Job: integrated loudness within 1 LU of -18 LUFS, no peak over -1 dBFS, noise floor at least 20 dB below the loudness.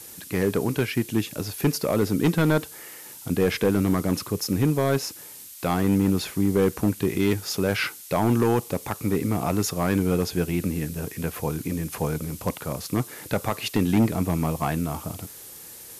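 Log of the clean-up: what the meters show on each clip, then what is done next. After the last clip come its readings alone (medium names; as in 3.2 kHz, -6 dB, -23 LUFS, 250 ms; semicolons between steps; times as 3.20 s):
clipped samples 1.4%; clipping level -14.0 dBFS; noise floor -43 dBFS; noise floor target -45 dBFS; loudness -25.0 LUFS; peak level -14.0 dBFS; loudness target -18.0 LUFS
-> clip repair -14 dBFS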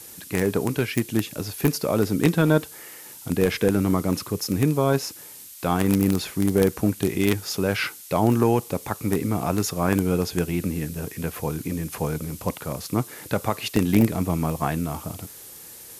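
clipped samples 0.0%; noise floor -43 dBFS; noise floor target -44 dBFS
-> noise reduction 6 dB, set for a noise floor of -43 dBFS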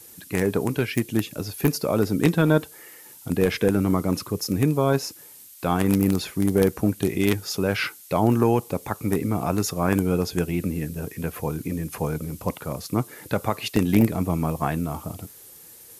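noise floor -47 dBFS; loudness -24.0 LUFS; peak level -5.0 dBFS; loudness target -18.0 LUFS
-> trim +6 dB; peak limiter -1 dBFS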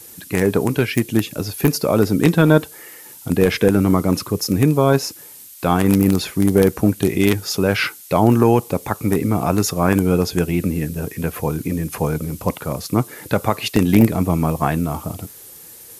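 loudness -18.5 LUFS; peak level -1.0 dBFS; noise floor -41 dBFS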